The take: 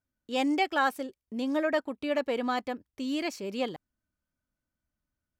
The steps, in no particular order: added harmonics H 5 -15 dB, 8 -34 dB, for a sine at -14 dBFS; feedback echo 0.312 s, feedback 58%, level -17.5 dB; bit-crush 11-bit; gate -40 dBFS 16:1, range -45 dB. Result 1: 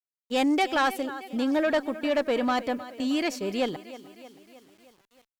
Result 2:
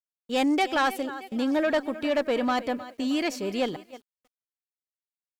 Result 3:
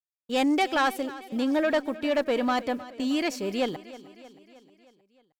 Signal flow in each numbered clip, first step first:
gate > feedback echo > bit-crush > added harmonics; feedback echo > added harmonics > gate > bit-crush; bit-crush > added harmonics > gate > feedback echo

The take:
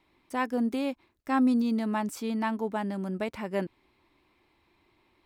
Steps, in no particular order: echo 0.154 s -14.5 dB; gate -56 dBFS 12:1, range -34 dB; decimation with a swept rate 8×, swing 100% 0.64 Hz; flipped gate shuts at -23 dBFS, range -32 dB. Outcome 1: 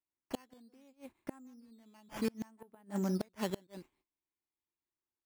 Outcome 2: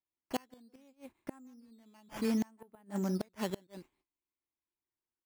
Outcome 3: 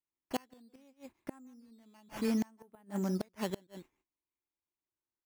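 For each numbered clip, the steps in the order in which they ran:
gate > echo > flipped gate > decimation with a swept rate; gate > echo > decimation with a swept rate > flipped gate; decimation with a swept rate > gate > echo > flipped gate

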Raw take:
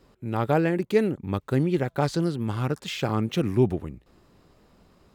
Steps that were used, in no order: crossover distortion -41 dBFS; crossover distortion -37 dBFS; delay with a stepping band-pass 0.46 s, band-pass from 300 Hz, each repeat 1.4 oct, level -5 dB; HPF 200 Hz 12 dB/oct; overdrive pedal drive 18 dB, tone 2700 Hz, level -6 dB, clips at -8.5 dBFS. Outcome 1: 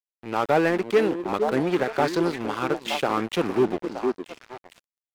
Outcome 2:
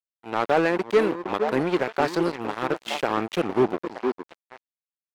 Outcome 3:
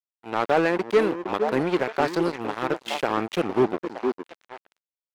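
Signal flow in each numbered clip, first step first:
first crossover distortion > delay with a stepping band-pass > overdrive pedal > HPF > second crossover distortion; HPF > first crossover distortion > delay with a stepping band-pass > second crossover distortion > overdrive pedal; HPF > second crossover distortion > delay with a stepping band-pass > first crossover distortion > overdrive pedal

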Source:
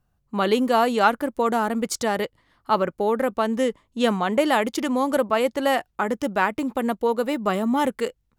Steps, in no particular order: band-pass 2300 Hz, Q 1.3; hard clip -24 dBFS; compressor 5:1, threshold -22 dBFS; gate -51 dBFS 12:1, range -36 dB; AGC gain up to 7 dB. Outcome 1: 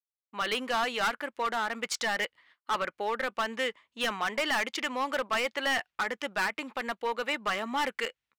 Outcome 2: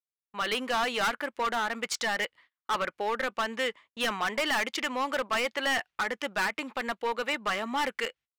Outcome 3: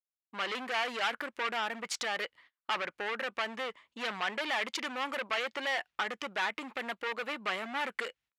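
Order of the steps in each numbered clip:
AGC > gate > band-pass > hard clip > compressor; band-pass > AGC > gate > hard clip > compressor; gate > hard clip > AGC > compressor > band-pass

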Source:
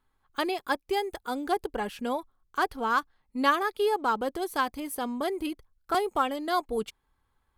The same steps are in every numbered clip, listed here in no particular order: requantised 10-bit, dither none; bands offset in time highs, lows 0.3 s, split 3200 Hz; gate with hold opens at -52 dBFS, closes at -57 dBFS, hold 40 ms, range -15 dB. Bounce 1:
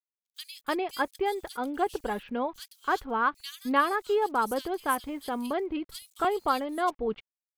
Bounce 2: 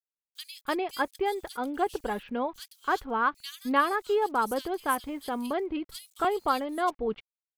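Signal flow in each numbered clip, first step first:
requantised > gate with hold > bands offset in time; gate with hold > requantised > bands offset in time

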